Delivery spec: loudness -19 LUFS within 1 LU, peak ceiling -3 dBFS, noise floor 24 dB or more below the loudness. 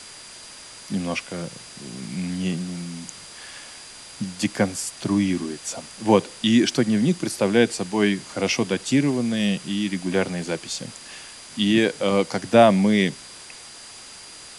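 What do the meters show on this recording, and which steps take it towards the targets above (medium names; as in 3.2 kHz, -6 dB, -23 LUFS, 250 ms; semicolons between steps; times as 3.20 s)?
steady tone 4.8 kHz; tone level -46 dBFS; noise floor -42 dBFS; noise floor target -47 dBFS; loudness -22.5 LUFS; peak level -3.0 dBFS; loudness target -19.0 LUFS
-> band-stop 4.8 kHz, Q 30; noise reduction 6 dB, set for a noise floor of -42 dBFS; trim +3.5 dB; peak limiter -3 dBFS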